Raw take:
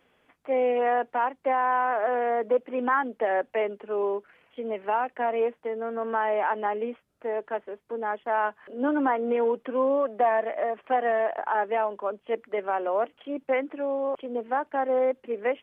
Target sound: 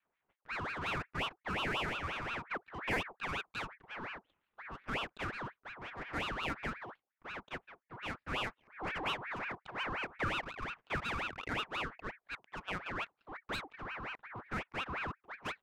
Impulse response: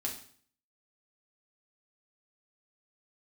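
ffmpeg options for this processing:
-af "highpass=f=160:t=q:w=0.5412,highpass=f=160:t=q:w=1.307,lowpass=f=2900:t=q:w=0.5176,lowpass=f=2900:t=q:w=0.7071,lowpass=f=2900:t=q:w=1.932,afreqshift=-53,equalizer=f=350:t=o:w=1.5:g=-10,adynamicsmooth=sensitivity=8:basefreq=660,aeval=exprs='val(0)*sin(2*PI*1300*n/s+1300*0.6/5.6*sin(2*PI*5.6*n/s))':c=same,volume=0.501"

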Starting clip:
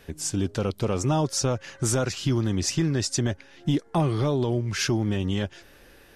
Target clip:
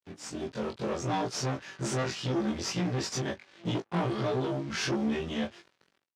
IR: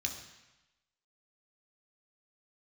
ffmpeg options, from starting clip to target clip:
-filter_complex "[0:a]afftfilt=real='re':imag='-im':win_size=2048:overlap=0.75,dynaudnorm=f=380:g=5:m=1.78,aeval=exprs='(tanh(22.4*val(0)+0.8)-tanh(0.8))/22.4':c=same,acrusher=bits=7:mix=0:aa=0.5,highpass=120,lowpass=5200,asplit=2[s0][s1];[s1]adelay=18,volume=0.422[s2];[s0][s2]amix=inputs=2:normalize=0,volume=1.19"

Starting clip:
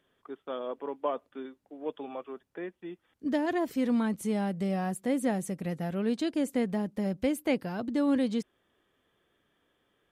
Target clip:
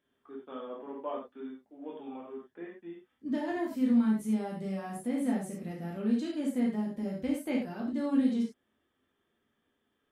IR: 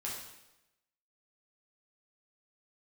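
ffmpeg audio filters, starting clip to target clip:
-filter_complex "[0:a]equalizer=f=250:w=4.1:g=11[s0];[1:a]atrim=start_sample=2205,afade=t=out:st=0.16:d=0.01,atrim=end_sample=7497[s1];[s0][s1]afir=irnorm=-1:irlink=0,volume=0.473"

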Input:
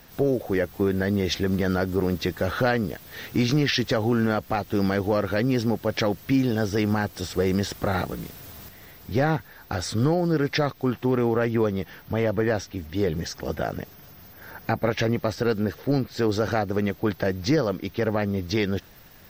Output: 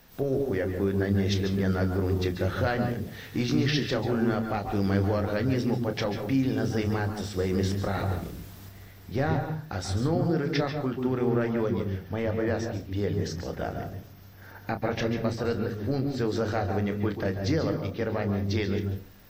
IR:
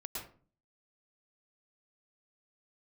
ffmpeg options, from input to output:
-filter_complex "[0:a]asplit=2[s0][s1];[1:a]atrim=start_sample=2205,lowshelf=f=250:g=7.5,adelay=30[s2];[s1][s2]afir=irnorm=-1:irlink=0,volume=0.596[s3];[s0][s3]amix=inputs=2:normalize=0,volume=0.501"

